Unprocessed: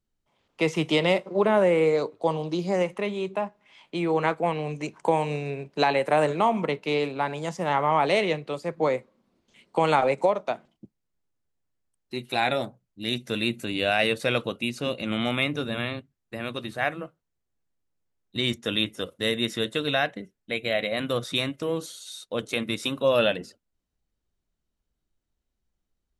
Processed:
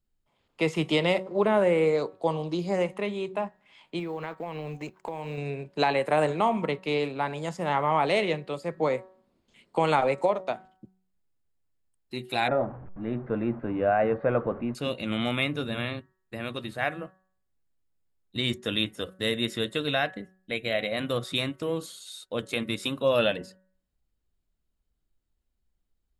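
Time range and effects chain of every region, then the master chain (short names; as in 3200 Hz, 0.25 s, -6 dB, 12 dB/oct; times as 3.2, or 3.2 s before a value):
3.99–5.38 G.711 law mismatch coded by A + bell 9300 Hz -10 dB 0.38 oct + compressor 5:1, threshold -29 dBFS
12.48–14.75 zero-crossing step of -36.5 dBFS + LPF 1500 Hz 24 dB/oct + dynamic EQ 690 Hz, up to +4 dB, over -37 dBFS, Q 0.89
whole clip: low shelf 78 Hz +6.5 dB; notch 5900 Hz, Q 7.8; de-hum 187.6 Hz, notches 10; gain -2 dB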